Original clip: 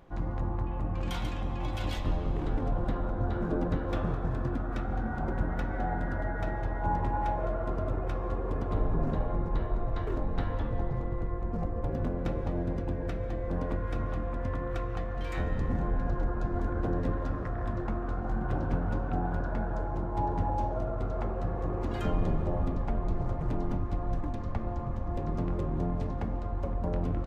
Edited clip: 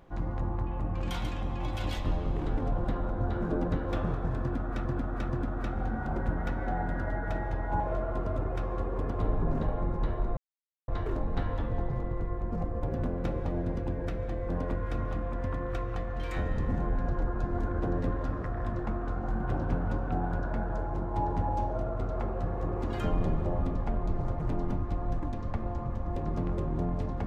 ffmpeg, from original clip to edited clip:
ffmpeg -i in.wav -filter_complex "[0:a]asplit=5[link_01][link_02][link_03][link_04][link_05];[link_01]atrim=end=4.852[link_06];[link_02]atrim=start=4.408:end=4.852[link_07];[link_03]atrim=start=4.408:end=6.922[link_08];[link_04]atrim=start=7.318:end=9.89,asetpts=PTS-STARTPTS,afade=type=out:start_time=2.568:duration=0.004:curve=hsin,apad=pad_dur=0.51[link_09];[link_05]atrim=start=9.89,asetpts=PTS-STARTPTS,afade=type=in:duration=0.004:curve=hsin[link_10];[link_06][link_07]acrossfade=duration=0.004:curve1=hsin:curve2=hsin[link_11];[link_11][link_08]acrossfade=duration=0.004:curve1=hsin:curve2=hsin[link_12];[link_09][link_10]concat=n=2:v=0:a=1[link_13];[link_12][link_13]acrossfade=duration=0.004:curve1=hsin:curve2=hsin" out.wav

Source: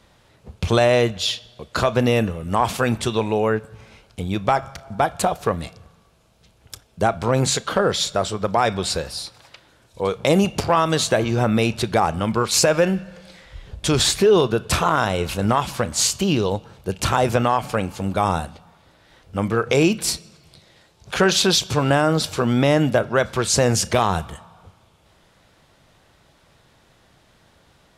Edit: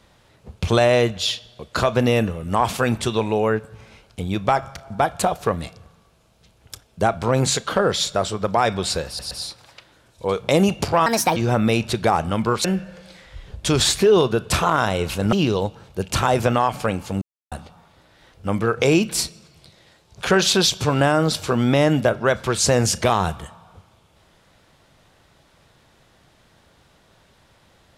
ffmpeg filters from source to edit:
ffmpeg -i in.wav -filter_complex "[0:a]asplit=9[link_01][link_02][link_03][link_04][link_05][link_06][link_07][link_08][link_09];[link_01]atrim=end=9.192[link_10];[link_02]atrim=start=9.068:end=9.192[link_11];[link_03]atrim=start=9.068:end=10.824[link_12];[link_04]atrim=start=10.82:end=11.26,asetpts=PTS-STARTPTS,asetrate=63504,aresample=44100[link_13];[link_05]atrim=start=11.256:end=12.542[link_14];[link_06]atrim=start=12.838:end=15.522[link_15];[link_07]atrim=start=16.218:end=18.11,asetpts=PTS-STARTPTS,afade=type=out:start_time=1.888:duration=0.004:curve=hsin[link_16];[link_08]atrim=start=18.11:end=18.41,asetpts=PTS-STARTPTS,volume=0[link_17];[link_09]atrim=start=18.41,asetpts=PTS-STARTPTS,afade=type=in:duration=0.004:curve=hsin[link_18];[link_10][link_11]acrossfade=duration=0.004:curve1=hsin:curve2=hsin[link_19];[link_19][link_12]acrossfade=duration=0.004:curve1=hsin:curve2=hsin[link_20];[link_20][link_13]acrossfade=duration=0.004:curve1=hsin:curve2=hsin[link_21];[link_21][link_14]acrossfade=duration=0.004:curve1=hsin:curve2=hsin[link_22];[link_22][link_15]acrossfade=duration=0.004:curve1=hsin:curve2=hsin[link_23];[link_16][link_17][link_18]concat=n=3:v=0:a=1[link_24];[link_23][link_24]acrossfade=duration=0.004:curve1=hsin:curve2=hsin" out.wav

